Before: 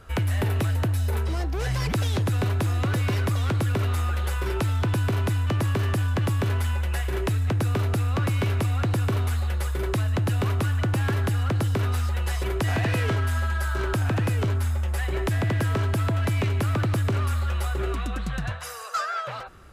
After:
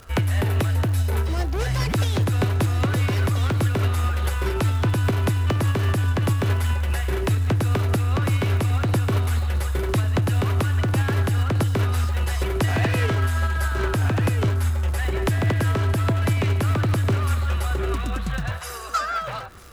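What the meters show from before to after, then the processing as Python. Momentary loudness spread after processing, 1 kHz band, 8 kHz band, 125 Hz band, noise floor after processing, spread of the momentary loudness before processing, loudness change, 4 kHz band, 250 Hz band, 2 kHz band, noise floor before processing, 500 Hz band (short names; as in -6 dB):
3 LU, +3.0 dB, +3.0 dB, +3.0 dB, -29 dBFS, 3 LU, +3.0 dB, +3.0 dB, +3.0 dB, +2.5 dB, -32 dBFS, +3.0 dB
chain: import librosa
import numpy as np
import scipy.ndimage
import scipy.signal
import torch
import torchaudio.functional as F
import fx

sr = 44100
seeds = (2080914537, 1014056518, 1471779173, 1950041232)

p1 = fx.dmg_crackle(x, sr, seeds[0], per_s=190.0, level_db=-37.0)
p2 = fx.volume_shaper(p1, sr, bpm=147, per_beat=2, depth_db=-6, release_ms=159.0, shape='slow start')
p3 = p1 + F.gain(torch.from_numpy(p2), 1.5).numpy()
p4 = p3 + 10.0 ** (-19.0 / 20.0) * np.pad(p3, (int(949 * sr / 1000.0), 0))[:len(p3)]
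y = F.gain(torch.from_numpy(p4), -2.5).numpy()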